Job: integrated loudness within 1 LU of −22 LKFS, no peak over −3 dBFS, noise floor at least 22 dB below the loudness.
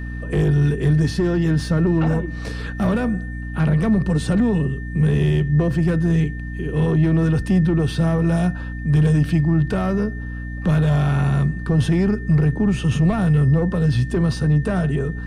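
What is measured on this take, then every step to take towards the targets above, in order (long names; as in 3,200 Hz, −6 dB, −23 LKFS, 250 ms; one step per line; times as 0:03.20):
mains hum 60 Hz; hum harmonics up to 300 Hz; level of the hum −26 dBFS; interfering tone 1,800 Hz; level of the tone −37 dBFS; integrated loudness −19.5 LKFS; sample peak −8.0 dBFS; target loudness −22.0 LKFS
→ hum removal 60 Hz, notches 5
notch filter 1,800 Hz, Q 30
level −2.5 dB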